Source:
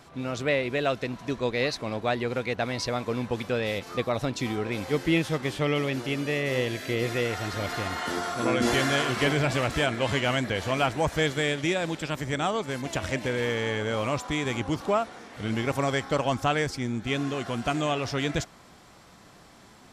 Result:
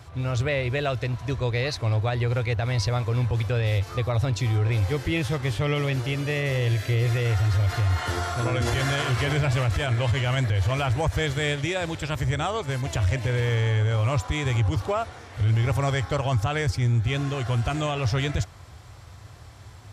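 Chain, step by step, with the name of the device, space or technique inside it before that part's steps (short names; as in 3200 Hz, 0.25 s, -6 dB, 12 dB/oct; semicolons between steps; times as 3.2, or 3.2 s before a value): HPF 52 Hz; car stereo with a boomy subwoofer (resonant low shelf 140 Hz +12.5 dB, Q 3; limiter -17.5 dBFS, peak gain reduction 10.5 dB); gain +1.5 dB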